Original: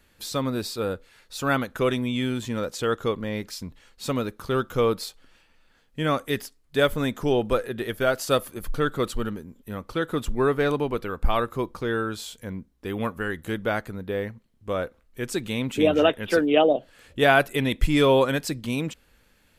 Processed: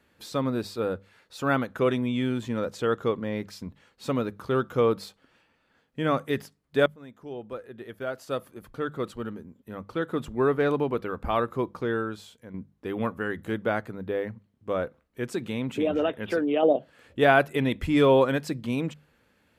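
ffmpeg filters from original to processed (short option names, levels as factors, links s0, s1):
-filter_complex "[0:a]asettb=1/sr,asplit=3[s0][s1][s2];[s0]atrim=end=15.354[s3];[s1]atrim=start=15.35:end=16.63,asetpts=PTS-STARTPTS,afade=t=in:d=0.004:c=qsin,afade=t=out:st=1.276:d=0.004:c=qsin,acompressor=threshold=0.0631:ratio=2:attack=3.2:release=140:knee=1:detection=peak[s4];[s2]atrim=start=16.626[s5];[s3][s4]acrossfade=d=0.004:c1=hsin:c2=qsin[s6];[s6][s5]acrossfade=d=0.004:c1=qsin:c2=hsin,asplit=3[s7][s8][s9];[s7]atrim=end=6.86,asetpts=PTS-STARTPTS,afade=t=out:st=6.856:d=0.004:c=hsin:silence=0.0630957[s10];[s8]atrim=start=6.86:end=12.54,asetpts=PTS-STARTPTS,afade=t=in:d=3.96:silence=0.0630957,afade=t=out:st=4.97:d=0.71:silence=0.334965[s11];[s9]atrim=start=12.54,asetpts=PTS-STARTPTS,afade=t=in:d=0.004:c=hsin:silence=0.334965[s12];[s10][s11][s12]concat=n=3:v=0:a=1,highpass=89,highshelf=f=3100:g=-11,bandreject=f=50:t=h:w=6,bandreject=f=100:t=h:w=6,bandreject=f=150:t=h:w=6,bandreject=f=200:t=h:w=6"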